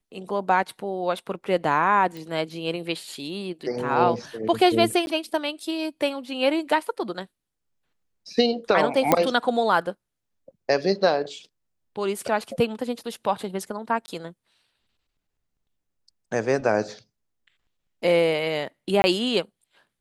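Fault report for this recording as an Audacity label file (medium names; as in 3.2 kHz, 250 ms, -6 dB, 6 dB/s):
2.170000	2.170000	pop
5.060000	5.070000	dropout 11 ms
9.120000	9.120000	pop -3 dBFS
14.060000	14.080000	dropout 20 ms
19.020000	19.040000	dropout 20 ms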